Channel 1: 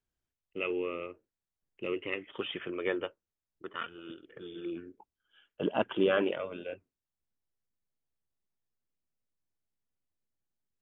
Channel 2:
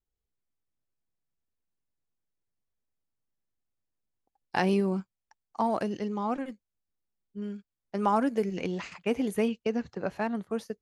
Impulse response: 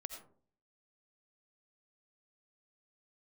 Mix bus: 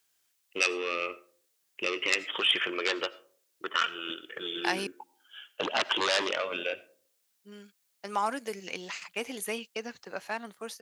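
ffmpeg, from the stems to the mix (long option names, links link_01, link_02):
-filter_complex "[0:a]aeval=exprs='0.178*sin(PI/2*3.16*val(0)/0.178)':channel_layout=same,acompressor=threshold=-22dB:ratio=6,volume=0dB,asplit=2[link_01][link_02];[link_02]volume=-8dB[link_03];[1:a]acontrast=56,adelay=100,volume=-4dB,asplit=3[link_04][link_05][link_06];[link_04]atrim=end=4.87,asetpts=PTS-STARTPTS,afade=type=out:start_time=4.866:duration=0.004:curve=hsin[link_07];[link_05]atrim=start=4.87:end=7.21,asetpts=PTS-STARTPTS,volume=0[link_08];[link_06]atrim=start=7.21,asetpts=PTS-STARTPTS,afade=type=in:duration=0.004:curve=hsin[link_09];[link_07][link_08][link_09]concat=n=3:v=0:a=1[link_10];[2:a]atrim=start_sample=2205[link_11];[link_03][link_11]afir=irnorm=-1:irlink=0[link_12];[link_01][link_10][link_12]amix=inputs=3:normalize=0,highpass=frequency=1400:poles=1,highshelf=frequency=3400:gain=6.5"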